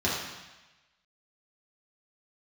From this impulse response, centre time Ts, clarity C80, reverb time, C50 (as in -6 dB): 67 ms, 3.5 dB, 1.1 s, 1.0 dB